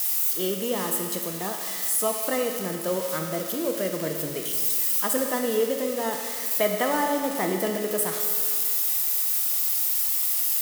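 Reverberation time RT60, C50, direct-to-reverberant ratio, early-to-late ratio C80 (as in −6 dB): 2.1 s, 4.0 dB, 2.0 dB, 5.0 dB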